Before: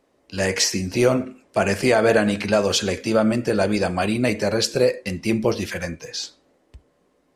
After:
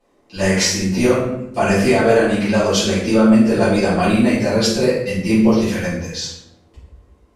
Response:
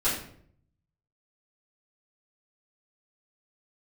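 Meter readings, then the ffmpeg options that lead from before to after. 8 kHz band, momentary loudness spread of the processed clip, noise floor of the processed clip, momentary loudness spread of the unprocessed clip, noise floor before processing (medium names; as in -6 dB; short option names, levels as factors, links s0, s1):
+3.0 dB, 9 LU, -56 dBFS, 11 LU, -65 dBFS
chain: -filter_complex "[0:a]alimiter=limit=0.376:level=0:latency=1:release=482[s0];[1:a]atrim=start_sample=2205,asetrate=32193,aresample=44100[s1];[s0][s1]afir=irnorm=-1:irlink=0,volume=0.398"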